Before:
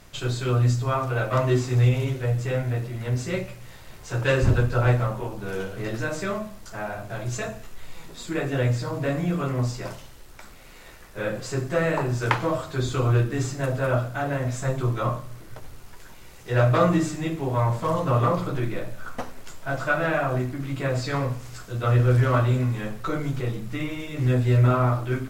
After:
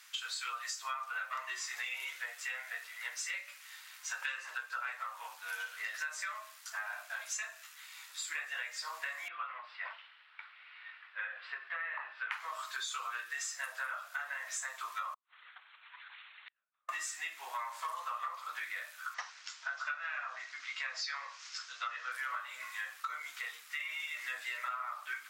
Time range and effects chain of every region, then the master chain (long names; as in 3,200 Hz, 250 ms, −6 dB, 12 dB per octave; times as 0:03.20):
0:09.28–0:12.32: downward compressor 4 to 1, threshold −25 dBFS + inverse Chebyshev low-pass filter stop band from 6,200 Hz
0:15.14–0:16.89: linear-prediction vocoder at 8 kHz whisper + downward compressor 3 to 1, threshold −36 dBFS + gate with flip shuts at −29 dBFS, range −41 dB
0:19.14–0:22.12: Butterworth low-pass 6,200 Hz + bass and treble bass −8 dB, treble +6 dB
whole clip: high-pass filter 1,300 Hz 24 dB per octave; noise reduction from a noise print of the clip's start 7 dB; downward compressor 10 to 1, threshold −42 dBFS; level +6 dB